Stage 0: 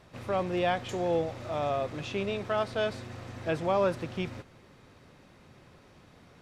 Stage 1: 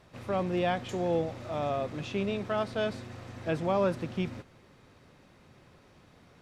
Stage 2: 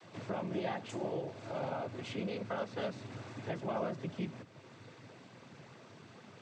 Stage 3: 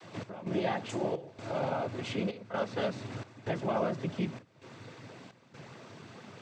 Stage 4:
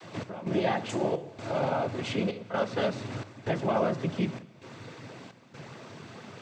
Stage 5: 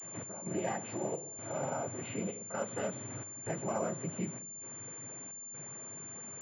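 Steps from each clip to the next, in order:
dynamic bell 210 Hz, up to +6 dB, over -44 dBFS, Q 1.2; trim -2 dB
compression 2:1, threshold -49 dBFS, peak gain reduction 14 dB; noise-vocoded speech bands 16; trim +4.5 dB
trance gate "x.xxx.xxx" 65 bpm -12 dB; trim +5.5 dB
plate-style reverb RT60 1.3 s, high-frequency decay 1×, DRR 16.5 dB; trim +4 dB
knee-point frequency compression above 2.3 kHz 1.5:1; class-D stage that switches slowly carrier 7.2 kHz; trim -8 dB

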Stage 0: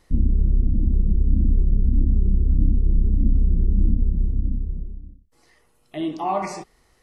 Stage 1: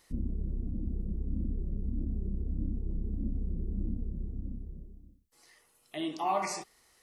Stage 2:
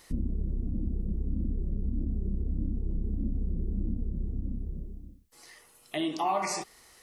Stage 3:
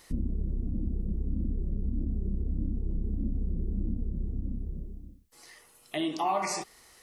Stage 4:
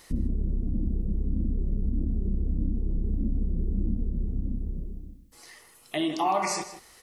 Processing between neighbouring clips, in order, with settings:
tilt EQ +2.5 dB/octave; trim -5 dB
compression 2:1, threshold -39 dBFS, peak gain reduction 8 dB; trim +8.5 dB
no audible change
echo from a far wall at 27 m, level -12 dB; trim +3 dB

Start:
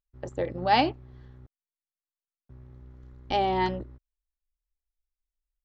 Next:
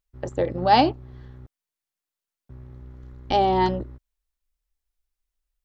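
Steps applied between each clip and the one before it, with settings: dynamic bell 2.2 kHz, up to -7 dB, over -44 dBFS, Q 1.4; trim +6 dB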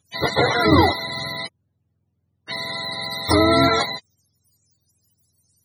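spectrum inverted on a logarithmic axis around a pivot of 500 Hz; dynamic bell 1.1 kHz, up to +4 dB, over -38 dBFS, Q 1; spectrum-flattening compressor 2:1; trim +2.5 dB

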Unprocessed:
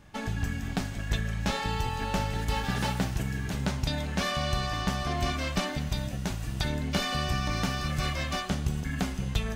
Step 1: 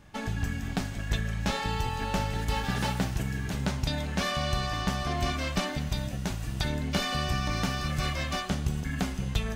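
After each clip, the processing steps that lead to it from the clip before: no audible change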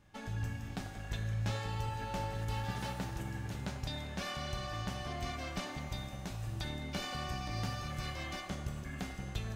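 feedback comb 110 Hz, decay 1.2 s, harmonics odd, mix 80%; on a send: feedback echo behind a band-pass 92 ms, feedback 82%, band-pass 790 Hz, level -8.5 dB; on the sum: trim +2.5 dB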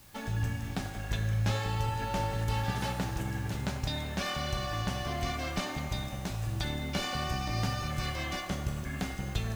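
vibrato 0.56 Hz 18 cents; added noise white -64 dBFS; trim +6 dB

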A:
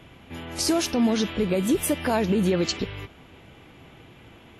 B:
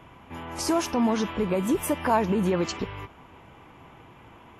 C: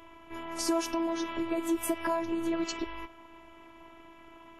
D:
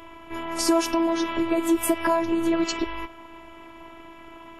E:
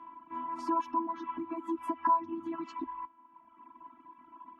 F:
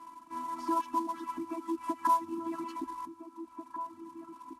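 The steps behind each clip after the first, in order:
fifteen-band graphic EQ 1 kHz +11 dB, 4 kHz -7 dB, 10 kHz -3 dB; trim -2.5 dB
compression 5:1, threshold -24 dBFS, peak gain reduction 7 dB; robot voice 331 Hz
band-stop 6.1 kHz, Q 15; trim +8 dB
reverb removal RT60 1.5 s; two resonant band-passes 510 Hz, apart 2 oct; trim +2 dB
CVSD coder 64 kbps; echo from a far wall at 290 m, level -9 dB

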